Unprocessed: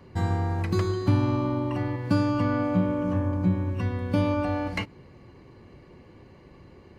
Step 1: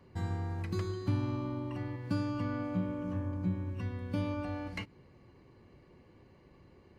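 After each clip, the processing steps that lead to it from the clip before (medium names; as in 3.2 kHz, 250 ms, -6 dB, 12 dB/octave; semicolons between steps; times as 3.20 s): dynamic bell 730 Hz, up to -4 dB, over -40 dBFS, Q 0.85; trim -9 dB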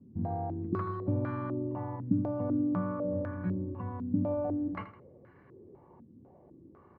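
high-pass 83 Hz; feedback delay 80 ms, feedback 41%, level -12 dB; step-sequenced low-pass 4 Hz 240–1600 Hz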